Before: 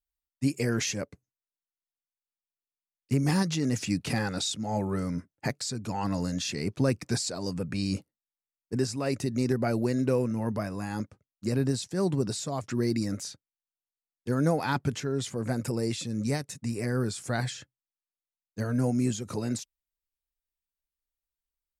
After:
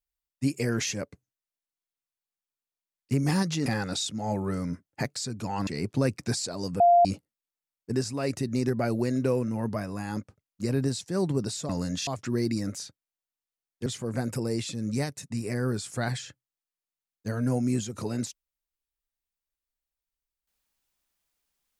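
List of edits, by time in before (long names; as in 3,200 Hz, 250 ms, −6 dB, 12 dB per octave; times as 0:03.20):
0:03.66–0:04.11: remove
0:06.12–0:06.50: move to 0:12.52
0:07.63–0:07.88: beep over 696 Hz −14.5 dBFS
0:14.31–0:15.18: remove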